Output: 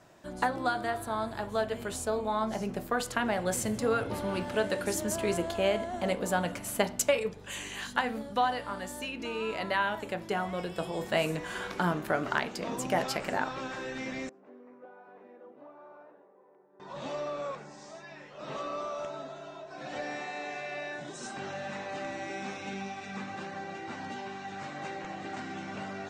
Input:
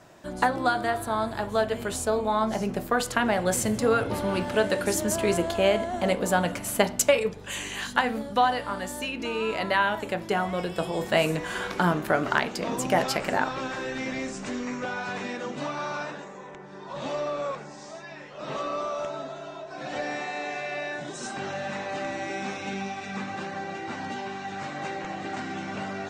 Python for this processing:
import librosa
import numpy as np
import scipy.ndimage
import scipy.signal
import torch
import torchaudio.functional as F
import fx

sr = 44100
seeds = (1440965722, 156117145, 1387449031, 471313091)

y = fx.ladder_bandpass(x, sr, hz=520.0, resonance_pct=20, at=(14.29, 16.8))
y = F.gain(torch.from_numpy(y), -5.5).numpy()